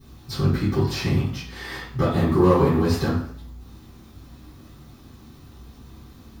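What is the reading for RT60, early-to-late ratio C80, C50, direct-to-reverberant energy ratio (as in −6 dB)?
0.60 s, 7.5 dB, 3.0 dB, −15.0 dB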